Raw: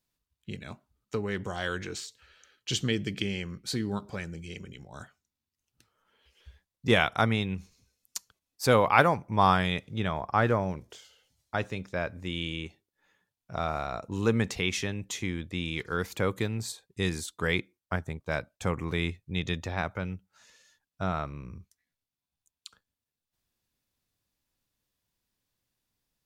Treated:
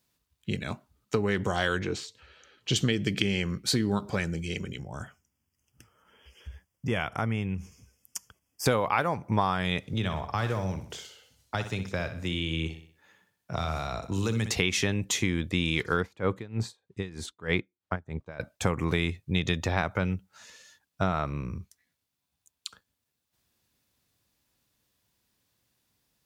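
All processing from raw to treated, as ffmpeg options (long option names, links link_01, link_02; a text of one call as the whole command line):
ffmpeg -i in.wav -filter_complex "[0:a]asettb=1/sr,asplit=3[link_01][link_02][link_03];[link_01]atrim=end=1.794[link_04];[link_02]atrim=start=1.79:end=2.76,asetpts=PTS-STARTPTS,afade=type=in:duration=0.004:curve=qsin,afade=type=out:start_time=0.966:duration=0.004:curve=qsin,lowpass=frequency=2200:poles=1,acompressor=mode=upward:threshold=-58dB:ratio=2.5:attack=3.2:release=140:knee=2.83:detection=peak,equalizer=frequency=1600:width_type=o:width=0.8:gain=-4.5[link_05];[link_03]atrim=start=2.756[link_06];[link_04][link_05]acrossfade=duration=0.004:curve1=hsin:curve2=qsin[link_07];[link_07][link_06]acrossfade=duration=0.004:curve1=qsin:curve2=hsin,asettb=1/sr,asplit=3[link_08][link_09][link_10];[link_08]atrim=end=4.794[link_11];[link_09]atrim=start=4.79:end=8.66,asetpts=PTS-STARTPTS,afade=type=in:duration=0.004:curve=qsin,afade=type=out:start_time=3.866:duration=0.004:curve=qsin,lowshelf=frequency=170:gain=7,acompressor=threshold=-44dB:ratio=2:attack=3.2:release=140:knee=1:detection=peak,asuperstop=centerf=4000:order=8:qfactor=2.9[link_12];[link_10]atrim=start=8.656[link_13];[link_11][link_12]acrossfade=duration=0.004:curve1=hsin:curve2=qsin[link_14];[link_14][link_13]acrossfade=duration=0.004:curve1=qsin:curve2=hsin,asettb=1/sr,asplit=3[link_15][link_16][link_17];[link_15]atrim=end=9.934[link_18];[link_16]atrim=start=9.93:end=14.51,asetpts=PTS-STARTPTS,afade=type=in:duration=0.004:curve=qsin,afade=type=out:start_time=4.576:duration=0.004:curve=qsin,acrossover=split=140|3100[link_19][link_20][link_21];[link_19]acompressor=threshold=-40dB:ratio=4[link_22];[link_20]acompressor=threshold=-40dB:ratio=4[link_23];[link_21]acompressor=threshold=-46dB:ratio=4[link_24];[link_22][link_23][link_24]amix=inputs=3:normalize=0,aecho=1:1:62|124|186|248|310:0.299|0.137|0.0632|0.0291|0.0134,atrim=end_sample=201978[link_25];[link_17]atrim=start=14.506[link_26];[link_18][link_25]acrossfade=duration=0.004:curve1=hsin:curve2=qsin[link_27];[link_27][link_26]acrossfade=duration=0.004:curve1=qsin:curve2=hsin,asettb=1/sr,asplit=3[link_28][link_29][link_30];[link_28]atrim=end=16.004[link_31];[link_29]atrim=start=16:end=18.4,asetpts=PTS-STARTPTS,afade=type=in:duration=0.004:curve=qsin,afade=type=out:start_time=2.396:duration=0.004:curve=qsin,aemphasis=mode=reproduction:type=75fm,aeval=exprs='val(0)*pow(10,-23*(0.5-0.5*cos(2*PI*3.2*n/s))/20)':channel_layout=same[link_32];[link_30]atrim=start=18.396[link_33];[link_31][link_32]acrossfade=duration=0.004:curve1=hsin:curve2=qsin[link_34];[link_34][link_33]acrossfade=duration=0.004:curve1=qsin:curve2=hsin,highpass=55,acompressor=threshold=-29dB:ratio=16,volume=8dB" out.wav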